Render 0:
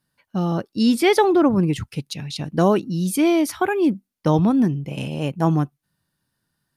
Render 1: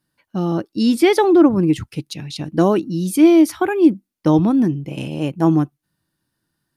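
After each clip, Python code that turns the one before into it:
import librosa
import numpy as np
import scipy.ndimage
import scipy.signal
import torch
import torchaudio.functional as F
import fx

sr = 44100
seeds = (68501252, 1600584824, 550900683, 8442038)

y = fx.peak_eq(x, sr, hz=320.0, db=9.0, octaves=0.3)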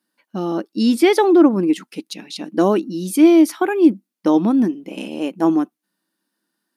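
y = fx.brickwall_highpass(x, sr, low_hz=180.0)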